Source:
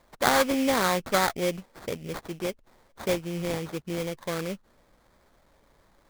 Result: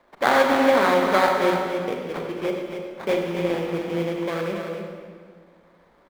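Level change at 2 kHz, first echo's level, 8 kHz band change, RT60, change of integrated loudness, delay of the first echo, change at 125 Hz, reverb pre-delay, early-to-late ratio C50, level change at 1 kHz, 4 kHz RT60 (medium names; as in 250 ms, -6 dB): +5.5 dB, -7.0 dB, -6.5 dB, 1.8 s, +5.5 dB, 276 ms, +2.0 dB, 31 ms, 1.0 dB, +6.5 dB, 1.4 s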